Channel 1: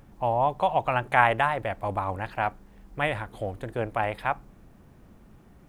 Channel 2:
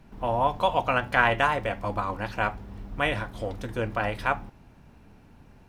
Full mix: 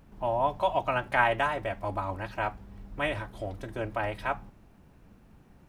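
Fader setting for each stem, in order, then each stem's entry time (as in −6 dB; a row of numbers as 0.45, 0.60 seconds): −5.5, −8.0 decibels; 0.00, 0.00 seconds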